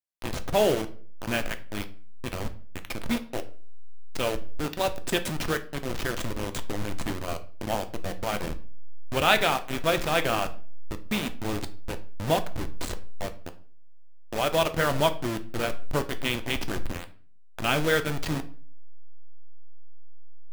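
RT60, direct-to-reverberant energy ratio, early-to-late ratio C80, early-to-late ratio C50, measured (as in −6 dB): 0.45 s, 8.0 dB, 20.0 dB, 15.5 dB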